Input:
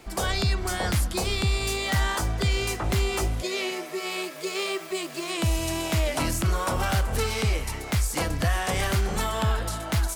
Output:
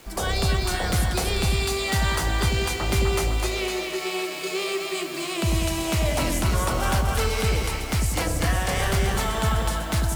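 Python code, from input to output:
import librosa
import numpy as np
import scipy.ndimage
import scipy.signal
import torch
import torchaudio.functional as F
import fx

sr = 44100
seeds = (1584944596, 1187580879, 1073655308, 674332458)

y = fx.quant_dither(x, sr, seeds[0], bits=8, dither='none')
y = fx.echo_split(y, sr, split_hz=710.0, low_ms=94, high_ms=253, feedback_pct=52, wet_db=-3)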